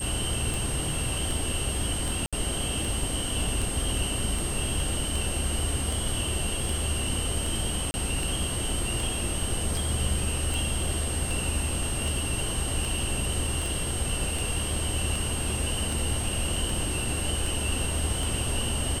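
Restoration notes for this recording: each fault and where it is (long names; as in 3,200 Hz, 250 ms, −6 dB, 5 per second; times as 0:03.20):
scratch tick 78 rpm
whistle 8,500 Hz −33 dBFS
0:02.26–0:02.33: drop-out 66 ms
0:07.91–0:07.94: drop-out 30 ms
0:13.66: click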